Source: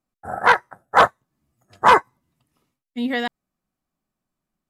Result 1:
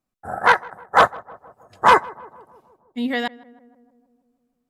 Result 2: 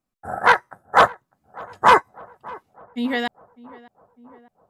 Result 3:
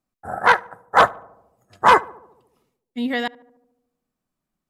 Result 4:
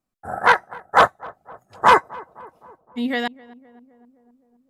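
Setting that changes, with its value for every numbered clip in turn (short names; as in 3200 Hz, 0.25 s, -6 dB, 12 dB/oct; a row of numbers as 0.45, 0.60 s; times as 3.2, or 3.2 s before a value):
darkening echo, time: 157, 602, 73, 258 ms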